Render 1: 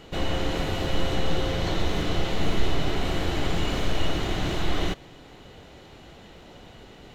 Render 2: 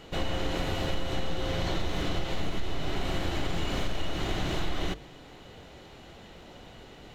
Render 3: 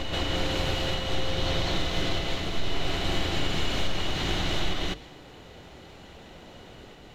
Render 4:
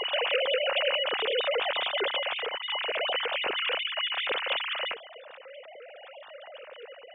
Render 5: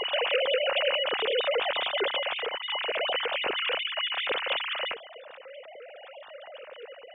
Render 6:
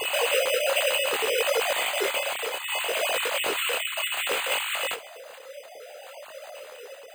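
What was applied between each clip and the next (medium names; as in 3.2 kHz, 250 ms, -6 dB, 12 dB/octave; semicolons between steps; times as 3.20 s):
hum notches 50/100/150/200/250/300/350/400/450 Hz; compression, threshold -23 dBFS, peak gain reduction 9 dB; trim -1 dB
dynamic bell 3.8 kHz, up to +6 dB, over -52 dBFS, Q 0.71; on a send: reverse echo 203 ms -3.5 dB
formants replaced by sine waves; trim -4 dB
bass shelf 390 Hz +4 dB
careless resampling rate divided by 8×, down none, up hold; detune thickener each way 22 cents; trim +6 dB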